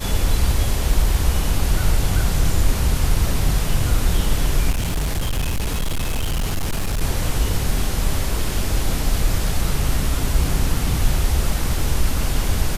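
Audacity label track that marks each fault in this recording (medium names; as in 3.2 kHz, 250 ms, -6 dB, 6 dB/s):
4.700000	7.010000	clipped -17.5 dBFS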